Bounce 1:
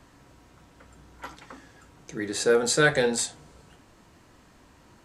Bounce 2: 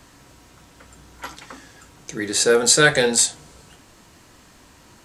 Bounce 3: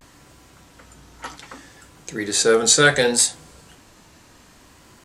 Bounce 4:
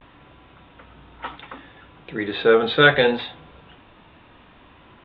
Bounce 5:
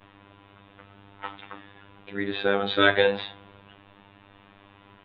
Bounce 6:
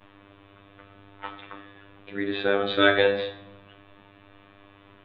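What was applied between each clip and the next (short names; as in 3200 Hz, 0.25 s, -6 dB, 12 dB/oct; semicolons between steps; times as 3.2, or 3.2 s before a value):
high shelf 2700 Hz +8.5 dB; gain +4 dB
vibrato 0.66 Hz 78 cents
rippled Chebyshev low-pass 3700 Hz, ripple 3 dB; gain +3 dB
robotiser 99.7 Hz; gain -1.5 dB
shoebox room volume 210 m³, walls mixed, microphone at 0.45 m; gain -1 dB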